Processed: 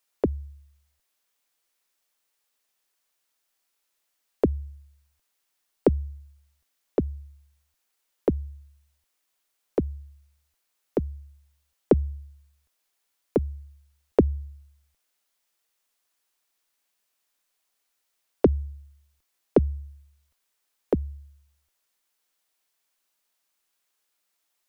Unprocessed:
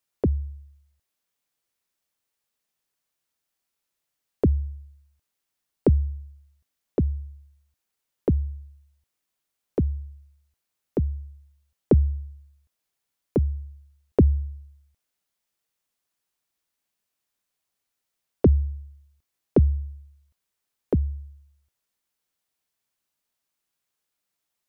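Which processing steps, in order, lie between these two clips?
bell 99 Hz -15 dB 2.4 oct; gain +5.5 dB

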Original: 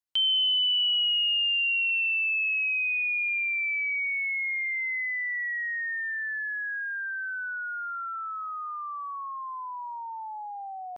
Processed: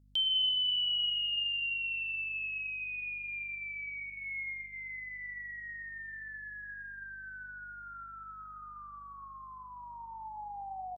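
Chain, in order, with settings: band shelf 1600 Hz -10.5 dB; 4.09–4.74 comb 7.4 ms, depth 56%; hum 50 Hz, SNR 25 dB; on a send: echo 0.107 s -22 dB; on the sum: plate-style reverb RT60 3.3 s, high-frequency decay 0.85×, DRR 12.5 dB; gain -2 dB

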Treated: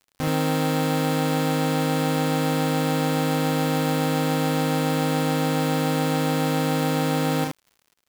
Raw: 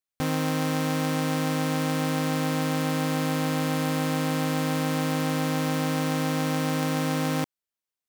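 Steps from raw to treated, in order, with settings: loudspeakers at several distances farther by 11 m -3 dB, 25 m -3 dB; crackle 110/s -44 dBFS

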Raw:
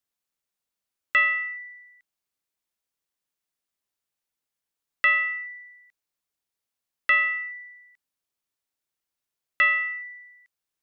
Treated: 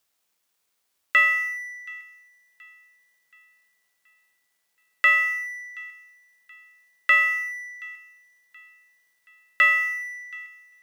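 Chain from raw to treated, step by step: G.711 law mismatch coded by mu; low shelf 260 Hz -8 dB; on a send: thin delay 0.726 s, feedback 46%, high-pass 1800 Hz, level -22 dB; on the sum: gain +2 dB

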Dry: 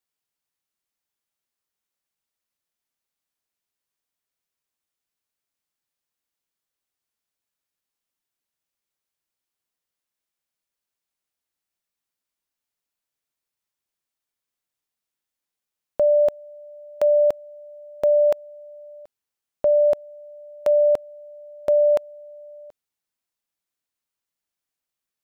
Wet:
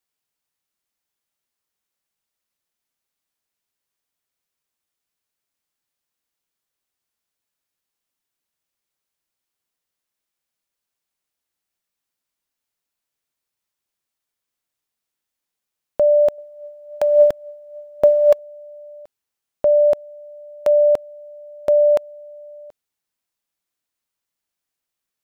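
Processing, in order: 16.38–18.39 phaser 1.2 Hz, delay 2.6 ms, feedback 44%; gain +3 dB

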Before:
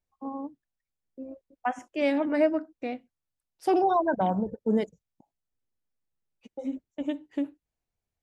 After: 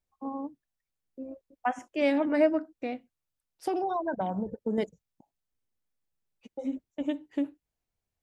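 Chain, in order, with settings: 2.73–4.78 compressor, threshold -27 dBFS, peak gain reduction 7.5 dB

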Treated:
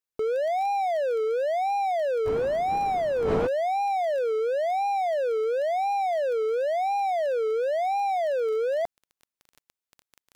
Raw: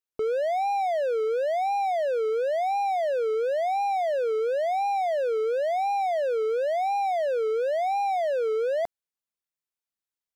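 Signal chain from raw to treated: 2.25–3.46 wind noise 580 Hz -28 dBFS; crackle 13/s -36 dBFS

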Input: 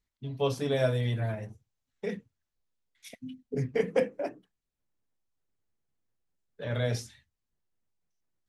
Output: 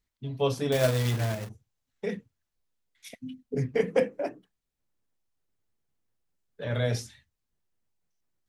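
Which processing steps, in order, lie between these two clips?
0.72–1.49 companded quantiser 4-bit; gain +2 dB

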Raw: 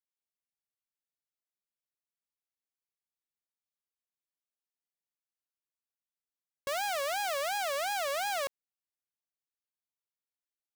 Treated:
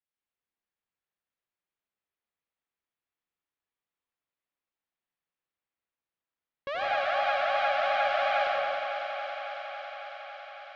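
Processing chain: inverse Chebyshev low-pass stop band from 12000 Hz, stop band 70 dB; thinning echo 0.276 s, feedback 83%, high-pass 230 Hz, level -8 dB; reverb RT60 1.6 s, pre-delay 72 ms, DRR -3.5 dB

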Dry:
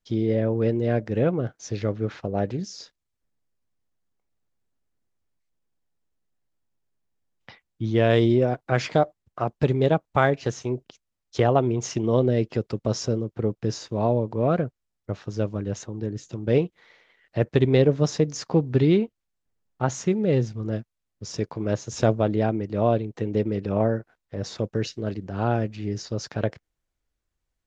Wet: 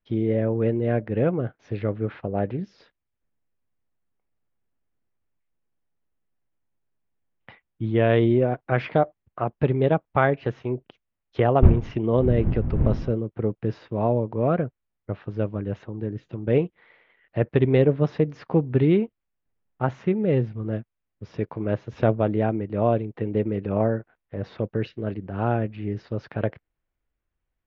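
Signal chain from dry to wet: 11.62–13.1 wind noise 120 Hz -24 dBFS; LPF 2900 Hz 24 dB/oct

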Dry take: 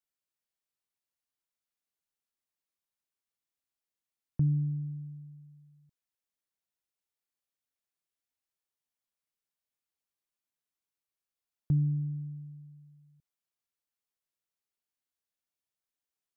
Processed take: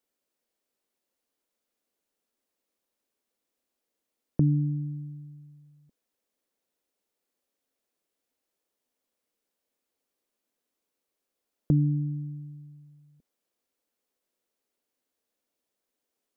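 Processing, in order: graphic EQ 125/250/500 Hz -8/+10/+10 dB; gain +6 dB

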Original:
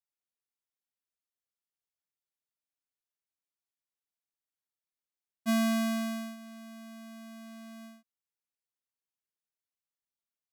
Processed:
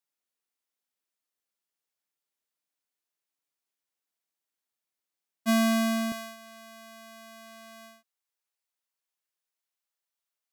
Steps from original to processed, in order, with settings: HPF 190 Hz 12 dB/oct, from 6.12 s 500 Hz; gain +5 dB

